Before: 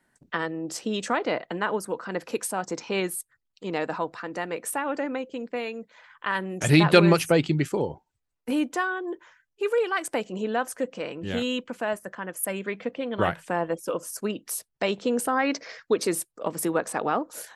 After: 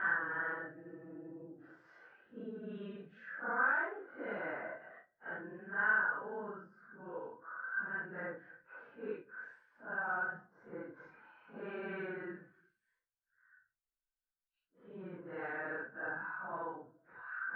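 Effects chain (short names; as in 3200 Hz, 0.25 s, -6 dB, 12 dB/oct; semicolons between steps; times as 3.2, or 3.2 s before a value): Paulstretch 4.5×, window 0.05 s, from 0.33; ladder low-pass 1600 Hz, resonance 85%; gain -5 dB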